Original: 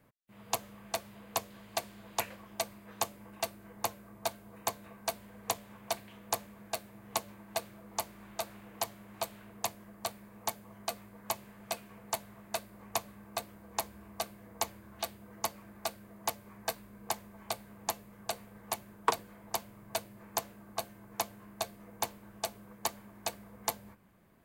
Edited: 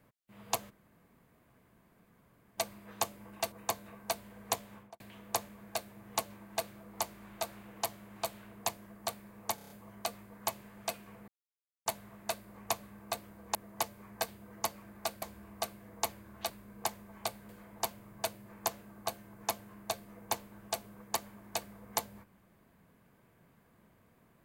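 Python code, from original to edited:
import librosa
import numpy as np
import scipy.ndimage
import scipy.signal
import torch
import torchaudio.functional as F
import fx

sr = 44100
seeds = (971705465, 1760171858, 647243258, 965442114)

y = fx.studio_fade_out(x, sr, start_s=5.72, length_s=0.26)
y = fx.edit(y, sr, fx.room_tone_fill(start_s=0.7, length_s=1.88, crossfade_s=0.02),
    fx.cut(start_s=3.52, length_s=0.98),
    fx.stutter(start_s=10.53, slice_s=0.03, count=6),
    fx.insert_silence(at_s=12.11, length_s=0.58),
    fx.swap(start_s=13.8, length_s=1.28, other_s=16.02, other_length_s=0.73),
    fx.cut(start_s=17.74, length_s=1.46), tone=tone)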